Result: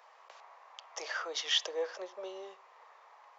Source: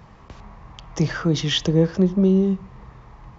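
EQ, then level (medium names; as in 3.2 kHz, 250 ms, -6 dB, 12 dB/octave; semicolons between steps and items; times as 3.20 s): steep high-pass 540 Hz 36 dB/octave; -6.5 dB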